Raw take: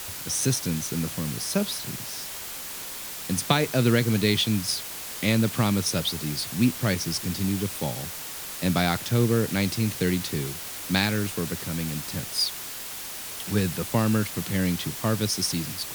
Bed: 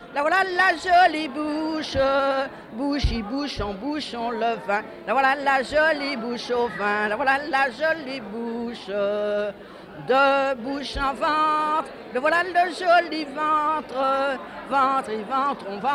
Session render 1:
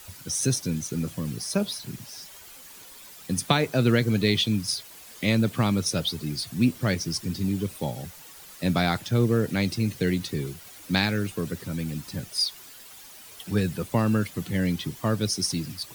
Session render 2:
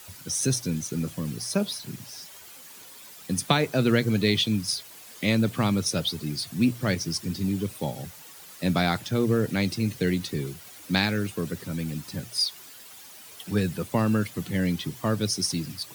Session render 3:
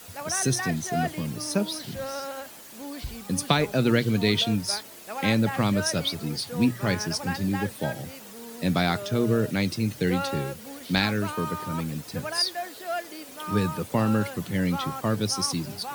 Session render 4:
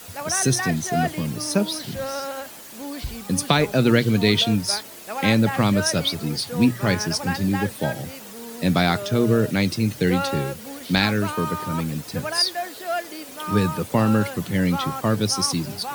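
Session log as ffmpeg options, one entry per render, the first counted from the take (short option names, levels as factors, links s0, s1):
-af "afftdn=nr=12:nf=-36"
-af "highpass=78,bandreject=f=60:t=h:w=6,bandreject=f=120:t=h:w=6"
-filter_complex "[1:a]volume=0.211[s0];[0:a][s0]amix=inputs=2:normalize=0"
-af "volume=1.68,alimiter=limit=0.708:level=0:latency=1"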